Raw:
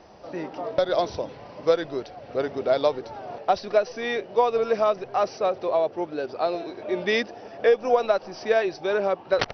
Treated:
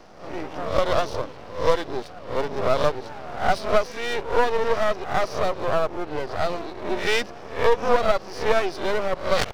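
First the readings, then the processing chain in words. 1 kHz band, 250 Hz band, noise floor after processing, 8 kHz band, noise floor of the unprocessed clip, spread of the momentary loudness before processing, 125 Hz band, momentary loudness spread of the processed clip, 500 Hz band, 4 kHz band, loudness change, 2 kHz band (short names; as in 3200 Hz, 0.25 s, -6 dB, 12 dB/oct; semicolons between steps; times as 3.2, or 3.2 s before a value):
+2.0 dB, 0.0 dB, -40 dBFS, n/a, -44 dBFS, 11 LU, +8.0 dB, 11 LU, -0.5 dB, +3.5 dB, +0.5 dB, +3.5 dB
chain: spectral swells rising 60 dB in 0.43 s; half-wave rectifier; gain +4 dB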